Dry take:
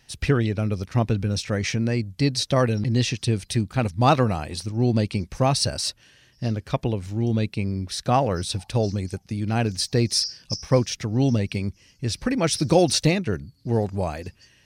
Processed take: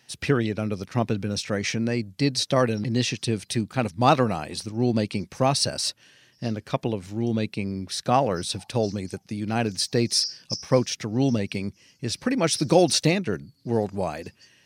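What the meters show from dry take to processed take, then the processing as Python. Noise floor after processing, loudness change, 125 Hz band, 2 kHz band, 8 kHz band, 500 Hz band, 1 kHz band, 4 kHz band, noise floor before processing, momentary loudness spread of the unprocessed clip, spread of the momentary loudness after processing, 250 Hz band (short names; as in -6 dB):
-61 dBFS, -1.0 dB, -5.0 dB, 0.0 dB, 0.0 dB, 0.0 dB, 0.0 dB, 0.0 dB, -59 dBFS, 10 LU, 11 LU, -1.0 dB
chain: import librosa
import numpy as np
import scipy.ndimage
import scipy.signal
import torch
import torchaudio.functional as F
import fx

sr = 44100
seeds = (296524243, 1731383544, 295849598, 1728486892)

y = scipy.signal.sosfilt(scipy.signal.butter(2, 150.0, 'highpass', fs=sr, output='sos'), x)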